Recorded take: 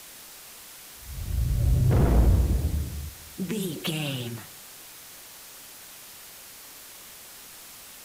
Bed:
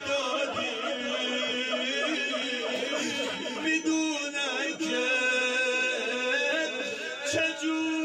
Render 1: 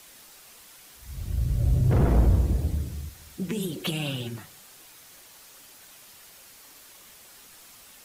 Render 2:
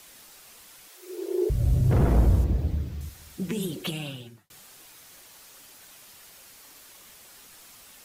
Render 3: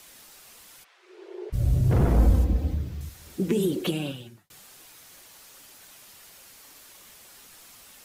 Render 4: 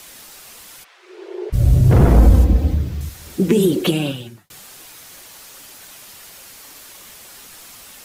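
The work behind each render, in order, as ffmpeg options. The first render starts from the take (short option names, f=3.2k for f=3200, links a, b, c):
-af "afftdn=nr=6:nf=-46"
-filter_complex "[0:a]asettb=1/sr,asplit=3[a][b][c];[a]atrim=end=0.884[d];[b]atrim=start=0.88:end=1.5,asetpts=PTS-STARTPTS,afade=t=in:d=0.004:c=qsin,afade=t=out:st=0.616:d=0.004:c=qsin,afreqshift=300[e];[c]atrim=start=1.496[f];[d][e]acrossfade=d=0.004:c1=hsin:c2=qsin[g];[g][f]acrossfade=d=0.004:c1=qsin:c2=hsin,asettb=1/sr,asplit=3[h][i][j];[h]atrim=end=2.444[k];[i]atrim=start=2.44:end=3.01,asetpts=PTS-STARTPTS,afade=t=in:d=0.004:c=qsin,afade=t=out:st=0.566:d=0.004:c=qsin,equalizer=f=10k:w=0.66:g=-13.5[l];[j]atrim=start=3.006[m];[k][l]acrossfade=d=0.004:c1=hsin:c2=qsin[n];[n][m]acrossfade=d=0.004:c1=qsin:c2=hsin,asplit=2[o][p];[o]atrim=end=4.5,asetpts=PTS-STARTPTS,afade=t=out:st=3.7:d=0.8[q];[p]atrim=start=4.5,asetpts=PTS-STARTPTS,afade=t=in:d=0.004:c=hsin[r];[q][r]concat=n=2:v=0:a=1"
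-filter_complex "[0:a]asplit=3[a][b][c];[a]afade=t=out:st=0.83:d=0.02[d];[b]highpass=760,lowpass=2.6k,afade=t=in:st=0.83:d=0.02,afade=t=out:st=1.52:d=0.02[e];[c]afade=t=in:st=1.52:d=0.02[f];[d][e][f]amix=inputs=3:normalize=0,asettb=1/sr,asplit=3[g][h][i];[g]atrim=end=2.194[j];[h]atrim=start=2.19:end=2.74,asetpts=PTS-STARTPTS,afade=t=in:d=0.004:c=qsin,afade=t=out:st=0.546:d=0.004:c=qsin,aecho=1:1:3.9:0.65,atrim=end_sample=24255[k];[i]atrim=start=2.736[l];[j][k]acrossfade=d=0.004:c1=hsin:c2=qsin[m];[m][l]acrossfade=d=0.004:c1=qsin:c2=hsin,asettb=1/sr,asplit=3[n][o][p];[n]atrim=end=3.244[q];[o]atrim=start=3.24:end=4.12,asetpts=PTS-STARTPTS,afade=t=in:d=0.004:c=qsin,afade=t=out:st=0.876:d=0.004:c=qsin,equalizer=f=360:t=o:w=1.4:g=10[r];[p]atrim=start=4.116[s];[q][r]acrossfade=d=0.004:c1=hsin:c2=qsin[t];[t][s]acrossfade=d=0.004:c1=qsin:c2=hsin"
-af "volume=9.5dB,alimiter=limit=-2dB:level=0:latency=1"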